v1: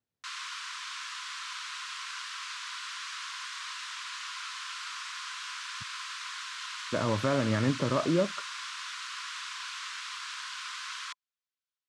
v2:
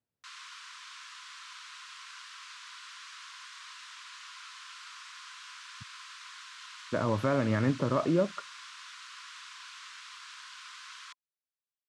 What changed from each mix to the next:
background −8.0 dB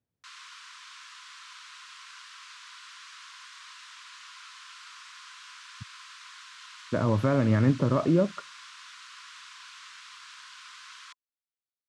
speech: add low-shelf EQ 310 Hz +8 dB

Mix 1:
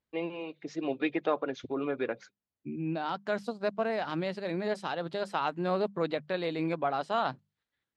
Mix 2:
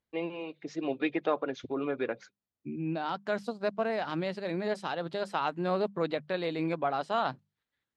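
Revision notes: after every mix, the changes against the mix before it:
nothing changed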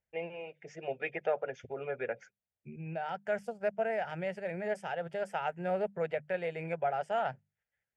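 master: add phaser with its sweep stopped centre 1,100 Hz, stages 6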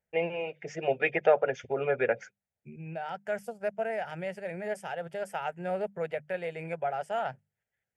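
first voice +9.0 dB
second voice: remove high-frequency loss of the air 62 metres

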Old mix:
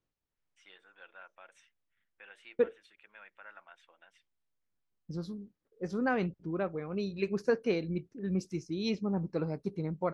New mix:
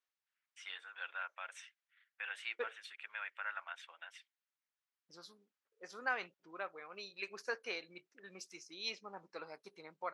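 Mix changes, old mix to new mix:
first voice +11.0 dB
master: add high-pass filter 1,100 Hz 12 dB per octave

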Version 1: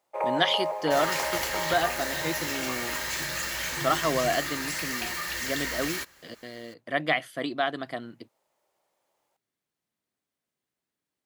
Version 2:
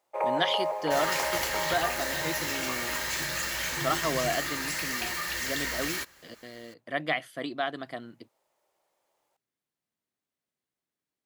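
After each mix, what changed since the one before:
speech −3.5 dB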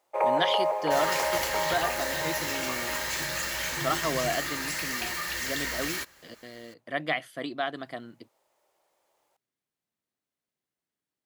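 first sound +3.5 dB

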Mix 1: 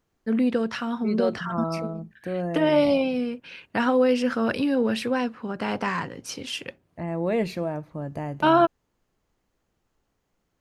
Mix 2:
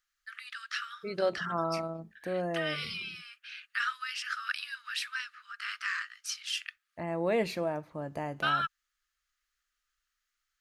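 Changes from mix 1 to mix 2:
first voice: add Chebyshev high-pass with heavy ripple 1,200 Hz, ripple 3 dB
master: add low-shelf EQ 310 Hz −11 dB

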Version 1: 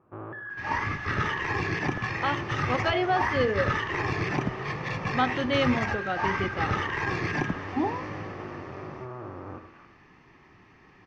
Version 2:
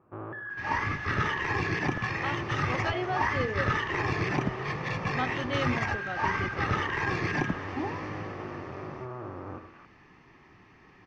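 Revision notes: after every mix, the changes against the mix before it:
speech −7.0 dB
second sound: send off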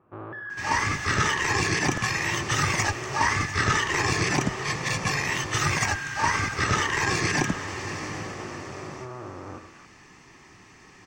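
speech: muted
second sound +3.0 dB
master: remove high-frequency loss of the air 280 metres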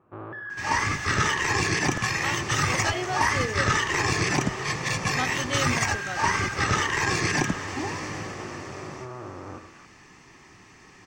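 speech: unmuted

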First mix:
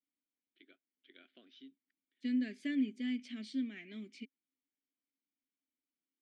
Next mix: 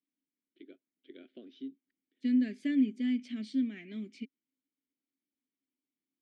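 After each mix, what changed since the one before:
first voice: add low shelf with overshoot 660 Hz +12 dB, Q 1.5
second voice: add low-shelf EQ 470 Hz +8 dB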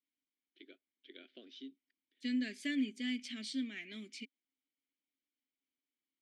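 master: add spectral tilt +4 dB per octave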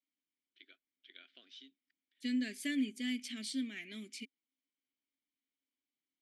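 first voice: add low shelf with overshoot 660 Hz −12 dB, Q 1.5
master: remove band-pass filter 150–6,100 Hz

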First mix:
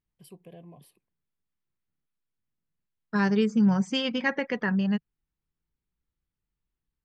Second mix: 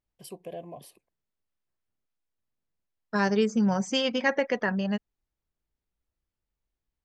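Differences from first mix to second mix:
first voice +6.5 dB
master: add graphic EQ with 15 bands 160 Hz −7 dB, 630 Hz +8 dB, 6,300 Hz +8 dB

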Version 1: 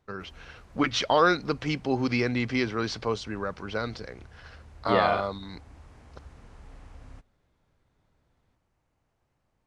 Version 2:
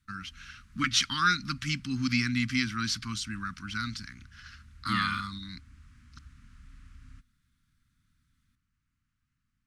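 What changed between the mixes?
first voice: remove high-frequency loss of the air 120 metres
background −3.0 dB
master: add elliptic band-stop filter 250–1,300 Hz, stop band 60 dB

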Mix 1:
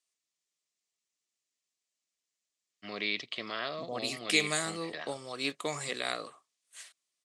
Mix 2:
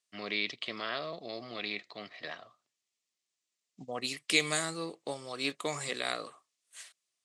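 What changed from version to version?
first voice: entry −2.70 s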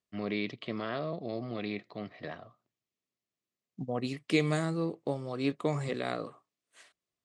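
master: add spectral tilt −4.5 dB per octave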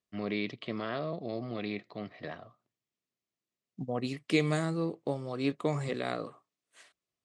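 nothing changed

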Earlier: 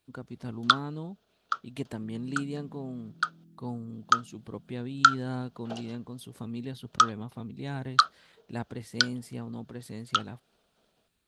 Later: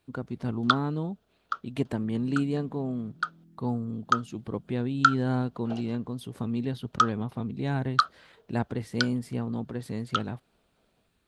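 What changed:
speech +7.0 dB
master: add high-shelf EQ 3,200 Hz −8.5 dB

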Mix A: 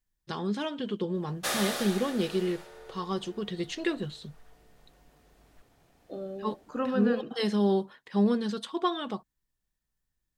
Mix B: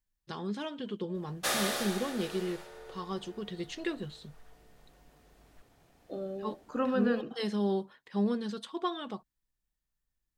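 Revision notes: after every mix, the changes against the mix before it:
first voice −5.0 dB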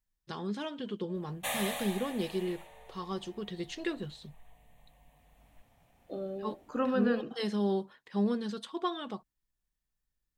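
background: add phaser with its sweep stopped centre 1,400 Hz, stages 6

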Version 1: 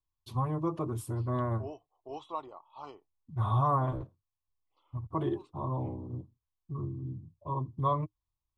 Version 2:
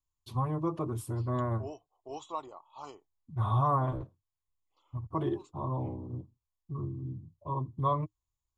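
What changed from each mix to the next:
second voice: add low-pass with resonance 7,000 Hz, resonance Q 16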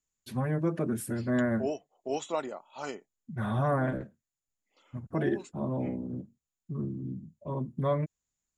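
first voice −6.5 dB
master: remove drawn EQ curve 110 Hz 0 dB, 220 Hz −21 dB, 310 Hz −8 dB, 580 Hz −13 dB, 1,100 Hz +3 dB, 1,600 Hz −25 dB, 3,300 Hz −7 dB, 10,000 Hz −14 dB

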